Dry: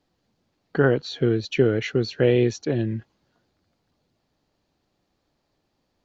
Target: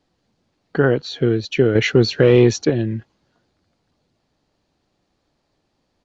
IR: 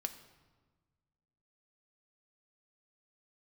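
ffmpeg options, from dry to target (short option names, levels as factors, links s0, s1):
-filter_complex "[0:a]asettb=1/sr,asplit=3[s0][s1][s2];[s0]atrim=end=1.754[s3];[s1]atrim=start=1.75:end=2.7,asetpts=PTS-STARTPTS,afade=t=in:d=0.004:c=qsin,afade=t=out:st=0.946:d=0.004:c=qsin,acontrast=74[s4];[s2]atrim=start=2.696[s5];[s3][s4]acrossfade=d=0.004:c1=hsin:c2=qsin[s6];[s6][s5]acrossfade=d=0.004:c1=qsin:c2=hsin,aresample=22050,aresample=44100,alimiter=level_in=2.11:limit=0.891:release=50:level=0:latency=1,volume=0.708"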